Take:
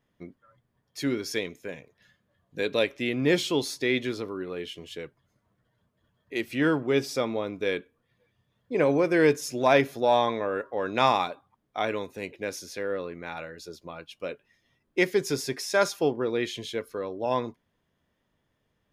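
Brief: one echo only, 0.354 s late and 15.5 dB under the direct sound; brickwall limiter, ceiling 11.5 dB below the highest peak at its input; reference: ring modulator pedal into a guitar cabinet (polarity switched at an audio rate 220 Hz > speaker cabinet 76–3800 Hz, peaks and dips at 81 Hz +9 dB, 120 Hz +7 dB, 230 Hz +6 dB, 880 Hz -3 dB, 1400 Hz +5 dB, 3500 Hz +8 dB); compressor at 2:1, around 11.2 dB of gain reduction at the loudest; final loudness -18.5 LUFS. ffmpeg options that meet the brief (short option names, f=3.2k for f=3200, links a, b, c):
-af "acompressor=threshold=-37dB:ratio=2,alimiter=level_in=5dB:limit=-24dB:level=0:latency=1,volume=-5dB,aecho=1:1:354:0.168,aeval=exprs='val(0)*sgn(sin(2*PI*220*n/s))':c=same,highpass=76,equalizer=f=81:t=q:w=4:g=9,equalizer=f=120:t=q:w=4:g=7,equalizer=f=230:t=q:w=4:g=6,equalizer=f=880:t=q:w=4:g=-3,equalizer=f=1.4k:t=q:w=4:g=5,equalizer=f=3.5k:t=q:w=4:g=8,lowpass=f=3.8k:w=0.5412,lowpass=f=3.8k:w=1.3066,volume=20.5dB"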